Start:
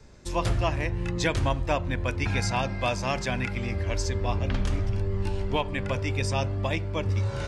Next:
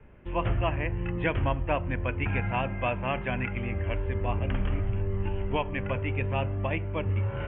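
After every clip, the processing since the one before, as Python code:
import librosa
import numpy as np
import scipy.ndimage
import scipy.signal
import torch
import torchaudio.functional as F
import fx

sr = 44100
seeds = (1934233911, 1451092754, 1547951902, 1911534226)

y = scipy.signal.sosfilt(scipy.signal.butter(16, 3100.0, 'lowpass', fs=sr, output='sos'), x)
y = F.gain(torch.from_numpy(y), -1.5).numpy()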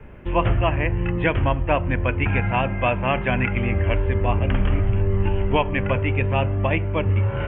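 y = fx.rider(x, sr, range_db=10, speed_s=0.5)
y = F.gain(torch.from_numpy(y), 8.0).numpy()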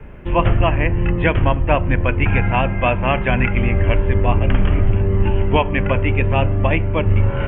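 y = fx.octave_divider(x, sr, octaves=2, level_db=-2.0)
y = F.gain(torch.from_numpy(y), 3.5).numpy()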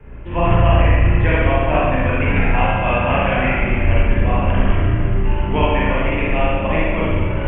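y = fx.rev_spring(x, sr, rt60_s=1.7, pass_ms=(35, 54), chirp_ms=20, drr_db=-8.0)
y = F.gain(torch.from_numpy(y), -7.0).numpy()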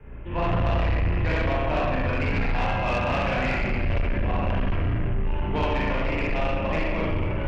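y = 10.0 ** (-14.5 / 20.0) * np.tanh(x / 10.0 ** (-14.5 / 20.0))
y = F.gain(torch.from_numpy(y), -4.5).numpy()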